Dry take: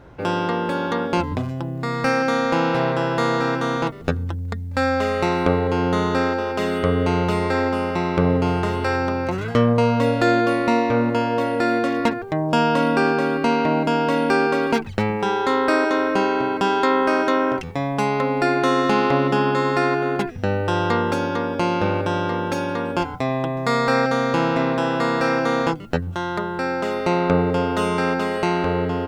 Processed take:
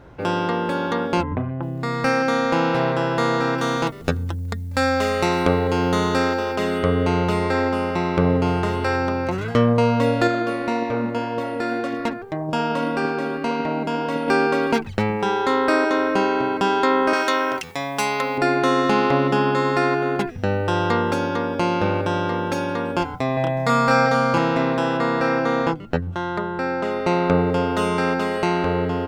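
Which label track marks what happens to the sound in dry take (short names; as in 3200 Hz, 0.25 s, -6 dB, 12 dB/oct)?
1.230000	1.630000	LPF 2200 Hz 24 dB/oct
3.580000	6.560000	high shelf 4600 Hz +9.5 dB
10.270000	14.280000	flange 1.8 Hz, delay 0 ms, depth 5.5 ms, regen +81%
17.130000	18.380000	tilt +3.5 dB/oct
23.340000	24.380000	doubler 29 ms -2.5 dB
24.970000	27.070000	high shelf 5100 Hz -10.5 dB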